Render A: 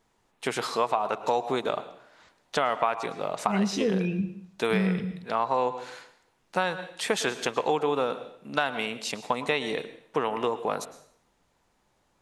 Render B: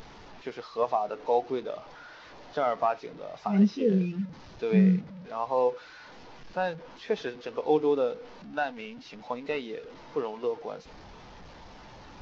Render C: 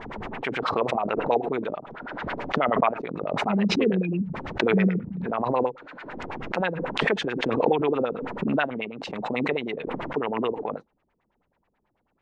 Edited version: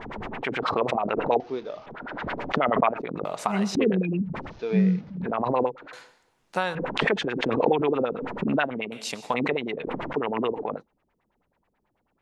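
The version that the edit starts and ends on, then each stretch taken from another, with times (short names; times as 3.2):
C
1.4–1.86 from B
3.25–3.75 from A
4.49–5.13 from B, crossfade 0.16 s
5.93–6.75 from A
8.92–9.34 from A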